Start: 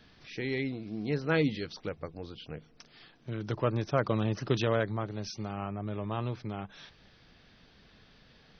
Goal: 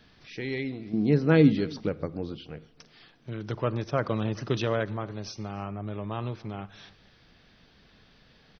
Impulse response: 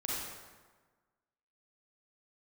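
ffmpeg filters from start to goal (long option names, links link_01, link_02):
-filter_complex "[0:a]asettb=1/sr,asplit=3[link_01][link_02][link_03];[link_01]atrim=end=0.934[link_04];[link_02]atrim=start=0.93:end=2.38,asetpts=PTS-STARTPTS,afade=type=in:duration=0.004:curve=qsin,afade=type=out:start_time=1.446:duration=0.004:curve=qsin,equalizer=frequency=220:width_type=o:width=2.6:gain=10.5[link_05];[link_03]atrim=start=2.376[link_06];[link_04][link_05]acrossfade=duration=0.004:curve1=hsin:curve2=qsin[link_07];[link_07][link_06]acrossfade=duration=0.004:curve1=qsin:curve2=hsin,asplit=2[link_08][link_09];[link_09]adelay=285.7,volume=-23dB,highshelf=frequency=4000:gain=-6.43[link_10];[link_08][link_10]amix=inputs=2:normalize=0,asplit=2[link_11][link_12];[1:a]atrim=start_sample=2205,afade=type=out:start_time=0.2:duration=0.01,atrim=end_sample=9261[link_13];[link_12][link_13]afir=irnorm=-1:irlink=0,volume=-19.5dB[link_14];[link_11][link_14]amix=inputs=2:normalize=0"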